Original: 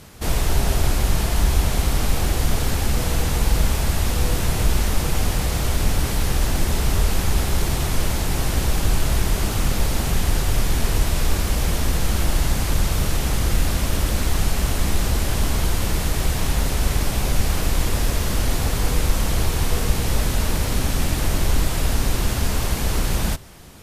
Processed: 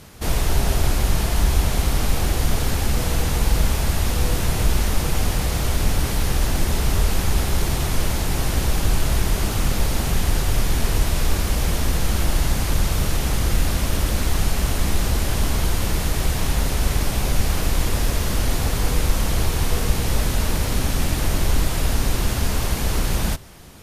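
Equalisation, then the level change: band-stop 7.7 kHz, Q 29; 0.0 dB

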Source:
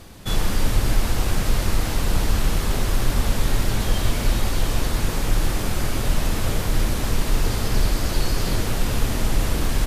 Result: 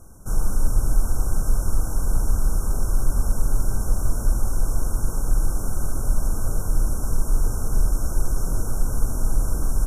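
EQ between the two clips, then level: brick-wall FIR band-stop 1.6–5.3 kHz; bass shelf 64 Hz +10.5 dB; peaking EQ 10 kHz +8 dB 0.77 oct; -7.5 dB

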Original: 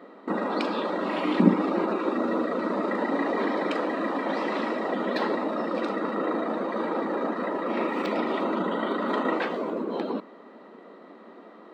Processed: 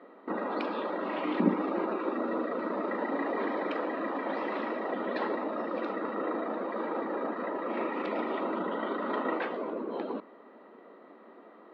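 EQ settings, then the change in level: band-pass 230–3000 Hz; -4.5 dB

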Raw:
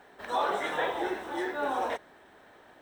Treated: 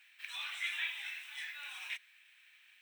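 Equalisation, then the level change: ladder high-pass 2.3 kHz, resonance 75%; treble shelf 8.7 kHz +8 dB; +6.0 dB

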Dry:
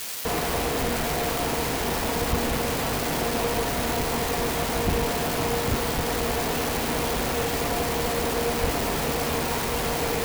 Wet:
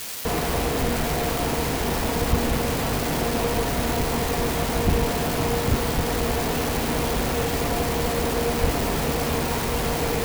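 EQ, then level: bass shelf 290 Hz +5.5 dB; 0.0 dB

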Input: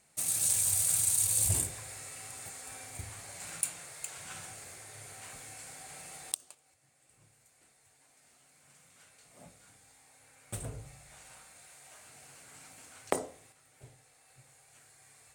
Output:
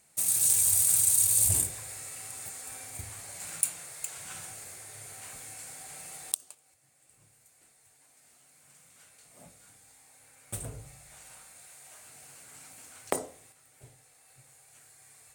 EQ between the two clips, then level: treble shelf 10 kHz +10.5 dB; 0.0 dB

